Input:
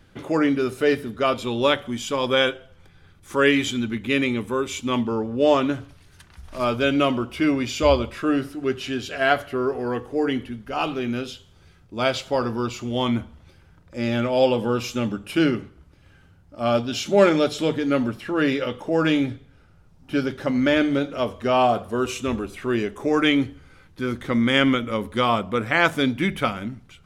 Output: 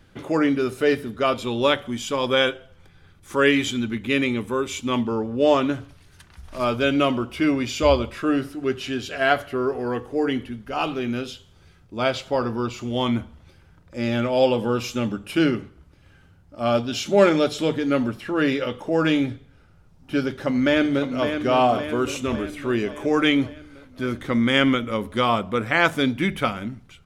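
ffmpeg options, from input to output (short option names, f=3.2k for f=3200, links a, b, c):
-filter_complex "[0:a]asettb=1/sr,asplit=3[a][b][c];[a]atrim=end=11.974[d];[b]atrim=start=11.97:end=12.78,asetpts=PTS-STARTPTS,afade=t=in:d=0.004:c=qsin,afade=t=out:st=0.806:d=0.004:c=qsin,highshelf=f=4.1k:g=-5[e];[c]atrim=start=12.776[f];[d][e]acrossfade=d=0.004:c1=hsin:c2=qsin[g];[g][f]acrossfade=d=0.004:c1=qsin:c2=hsin,asplit=2[h][i];[i]afade=t=in:st=20.28:d=0.01,afade=t=out:st=21.28:d=0.01,aecho=0:1:560|1120|1680|2240|2800|3360|3920|4480:0.421697|0.253018|0.151811|0.0910864|0.0546519|0.0327911|0.0196747|0.0118048[j];[h][j]amix=inputs=2:normalize=0"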